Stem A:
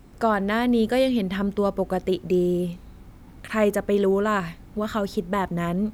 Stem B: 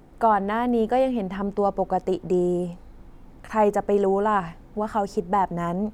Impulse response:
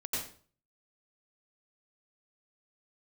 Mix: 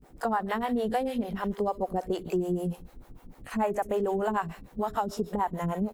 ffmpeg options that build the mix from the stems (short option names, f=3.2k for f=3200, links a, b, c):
-filter_complex "[0:a]crystalizer=i=2.5:c=0,volume=-15dB,asplit=2[a][b];[b]volume=-5dB[c];[1:a]volume=-1,adelay=21,volume=2dB[d];[2:a]atrim=start_sample=2205[e];[c][e]afir=irnorm=-1:irlink=0[f];[a][d][f]amix=inputs=3:normalize=0,acrossover=split=430[g][h];[g]aeval=exprs='val(0)*(1-1/2+1/2*cos(2*PI*6.7*n/s))':c=same[i];[h]aeval=exprs='val(0)*(1-1/2-1/2*cos(2*PI*6.7*n/s))':c=same[j];[i][j]amix=inputs=2:normalize=0,acompressor=threshold=-24dB:ratio=6"